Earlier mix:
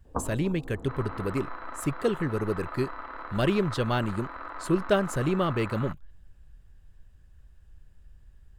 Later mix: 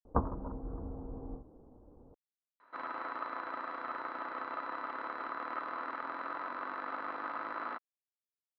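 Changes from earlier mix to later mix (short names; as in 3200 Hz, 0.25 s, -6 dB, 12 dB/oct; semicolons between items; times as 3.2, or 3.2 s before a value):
speech: muted; second sound: entry +1.85 s; master: add low shelf 74 Hz +8 dB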